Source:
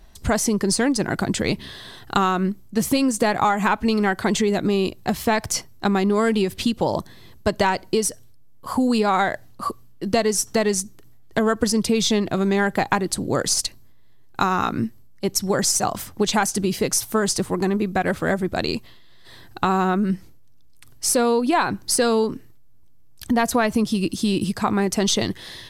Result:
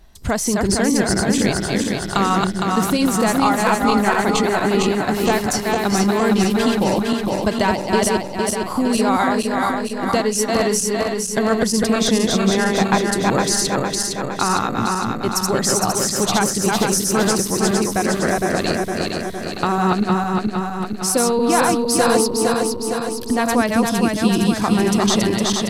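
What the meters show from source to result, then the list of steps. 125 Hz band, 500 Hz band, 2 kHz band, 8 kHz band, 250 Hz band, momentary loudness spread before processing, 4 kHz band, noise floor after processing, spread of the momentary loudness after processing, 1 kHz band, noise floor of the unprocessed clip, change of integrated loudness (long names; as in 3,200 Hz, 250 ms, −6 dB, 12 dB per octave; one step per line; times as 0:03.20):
+4.0 dB, +3.5 dB, +4.0 dB, +4.0 dB, +4.0 dB, 8 LU, +4.0 dB, −27 dBFS, 5 LU, +4.0 dB, −45 dBFS, +3.5 dB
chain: feedback delay that plays each chunk backwards 230 ms, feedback 77%, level −2 dB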